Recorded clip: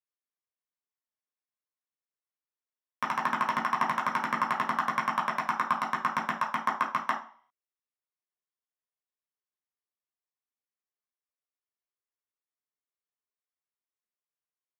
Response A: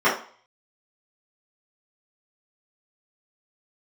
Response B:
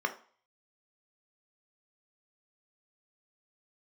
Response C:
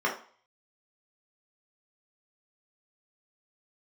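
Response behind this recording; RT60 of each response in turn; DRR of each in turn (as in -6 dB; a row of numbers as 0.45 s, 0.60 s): C; 0.45 s, 0.45 s, 0.45 s; -13.5 dB, 5.0 dB, -4.0 dB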